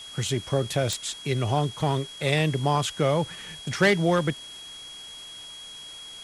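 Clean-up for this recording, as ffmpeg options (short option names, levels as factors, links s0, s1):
-af "adeclick=t=4,bandreject=f=3300:w=30,afwtdn=0.005"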